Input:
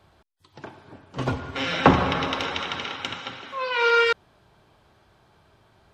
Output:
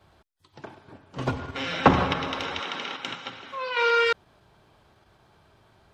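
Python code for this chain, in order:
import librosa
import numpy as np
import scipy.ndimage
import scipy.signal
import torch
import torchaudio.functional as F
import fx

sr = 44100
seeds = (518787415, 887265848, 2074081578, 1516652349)

p1 = fx.highpass(x, sr, hz=fx.line((2.59, 210.0), (3.35, 100.0)), slope=24, at=(2.59, 3.35), fade=0.02)
p2 = fx.level_steps(p1, sr, step_db=12)
p3 = p1 + (p2 * 10.0 ** (2.5 / 20.0))
y = p3 * 10.0 ** (-7.0 / 20.0)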